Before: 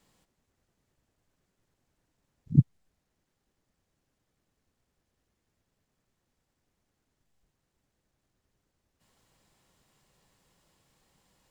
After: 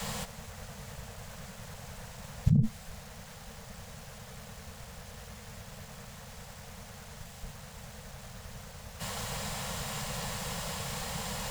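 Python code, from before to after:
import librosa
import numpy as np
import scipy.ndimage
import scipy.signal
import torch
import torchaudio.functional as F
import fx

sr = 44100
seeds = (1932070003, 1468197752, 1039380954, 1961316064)

y = fx.diode_clip(x, sr, knee_db=-7.0)
y = scipy.signal.sosfilt(scipy.signal.cheby1(4, 1.0, [220.0, 450.0], 'bandstop', fs=sr, output='sos'), y)
y = fx.env_flatten(y, sr, amount_pct=100)
y = y * librosa.db_to_amplitude(-6.0)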